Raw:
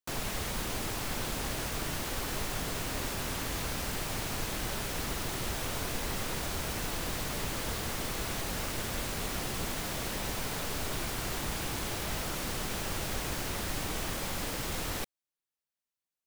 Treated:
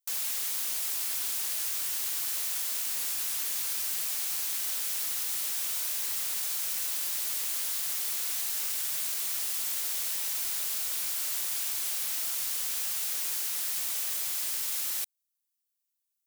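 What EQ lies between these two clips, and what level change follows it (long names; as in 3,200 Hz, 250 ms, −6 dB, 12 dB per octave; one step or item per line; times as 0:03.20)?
first difference
+6.5 dB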